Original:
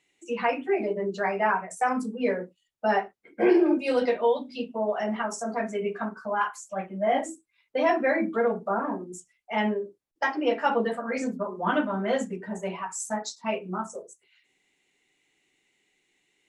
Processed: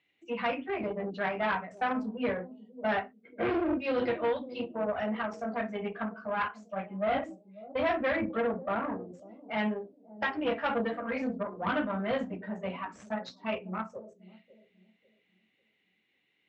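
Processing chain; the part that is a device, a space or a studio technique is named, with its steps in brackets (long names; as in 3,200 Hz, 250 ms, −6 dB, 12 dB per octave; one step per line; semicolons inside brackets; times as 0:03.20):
analogue delay pedal into a guitar amplifier (bucket-brigade delay 544 ms, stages 2,048, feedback 33%, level −16 dB; tube saturation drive 21 dB, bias 0.55; loudspeaker in its box 80–3,800 Hz, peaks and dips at 88 Hz +6 dB, 380 Hz −7 dB, 880 Hz −4 dB)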